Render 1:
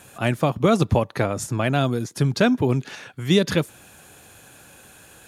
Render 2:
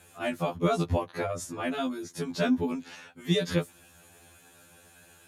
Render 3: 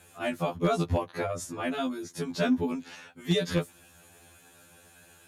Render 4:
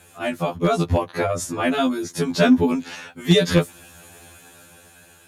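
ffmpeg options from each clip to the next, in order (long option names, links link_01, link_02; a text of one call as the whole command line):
ffmpeg -i in.wav -af "afftfilt=real='re*2*eq(mod(b,4),0)':imag='im*2*eq(mod(b,4),0)':win_size=2048:overlap=0.75,volume=-5.5dB" out.wav
ffmpeg -i in.wav -af "volume=17dB,asoftclip=hard,volume=-17dB" out.wav
ffmpeg -i in.wav -af "dynaudnorm=framelen=320:gausssize=7:maxgain=5dB,volume=5.5dB" out.wav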